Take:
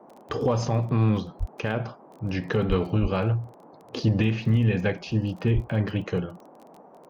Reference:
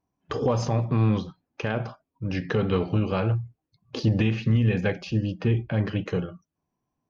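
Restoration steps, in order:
click removal
high-pass at the plosives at 0:01.39/0:02.68/0:03.01/0:05.54
noise reduction from a noise print 30 dB

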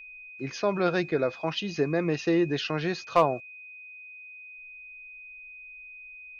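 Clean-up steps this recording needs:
clipped peaks rebuilt −11.5 dBFS
notch filter 2,500 Hz, Q 30

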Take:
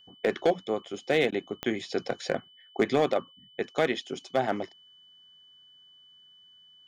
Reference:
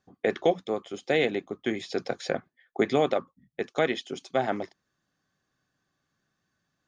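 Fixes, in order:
clipped peaks rebuilt −15.5 dBFS
click removal
notch filter 3,000 Hz, Q 30
repair the gap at 0:01.31, 11 ms

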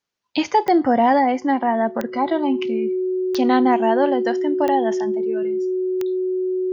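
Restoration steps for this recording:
click removal
notch filter 370 Hz, Q 30

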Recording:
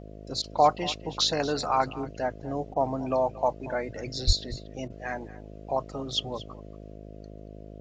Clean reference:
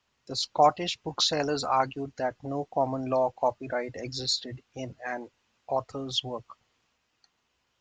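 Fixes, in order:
hum removal 52.2 Hz, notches 13
0:04.26–0:04.38: high-pass filter 140 Hz 24 dB per octave
repair the gap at 0:00.42/0:02.74/0:04.88, 20 ms
echo removal 232 ms −17.5 dB

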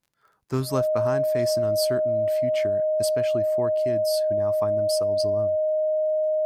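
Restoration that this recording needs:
click removal
notch filter 620 Hz, Q 30

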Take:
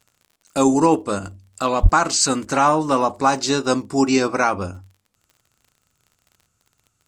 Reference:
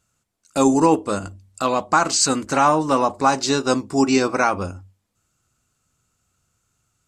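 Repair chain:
clipped peaks rebuilt −4 dBFS
click removal
0:01.82–0:01.94: high-pass filter 140 Hz 24 dB per octave

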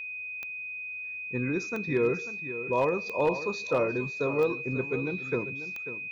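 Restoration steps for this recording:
clipped peaks rebuilt −17.5 dBFS
click removal
notch filter 2,500 Hz, Q 30
echo removal 542 ms −12.5 dB

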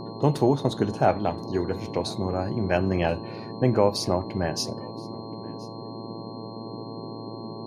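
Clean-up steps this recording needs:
hum removal 112.1 Hz, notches 10
notch filter 4,200 Hz, Q 30
noise reduction from a noise print 30 dB
echo removal 1,025 ms −23.5 dB

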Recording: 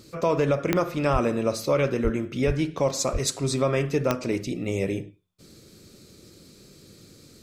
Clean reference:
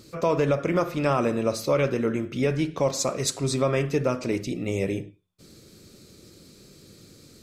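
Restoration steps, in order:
click removal
high-pass at the plosives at 0:01.12/0:02.03/0:02.46/0:03.12

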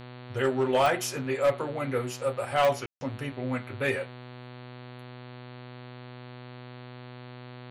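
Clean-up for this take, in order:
clipped peaks rebuilt −17 dBFS
click removal
hum removal 124.1 Hz, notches 36
ambience match 0:02.86–0:03.01

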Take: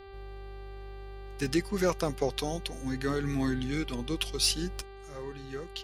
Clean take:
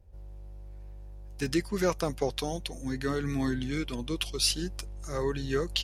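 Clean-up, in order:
clipped peaks rebuilt −16 dBFS
hum removal 392.5 Hz, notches 12
level correction +10.5 dB, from 0:04.82

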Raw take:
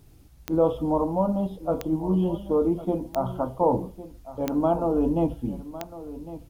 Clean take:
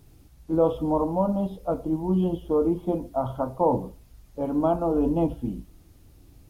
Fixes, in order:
click removal
echo removal 1,105 ms −15 dB

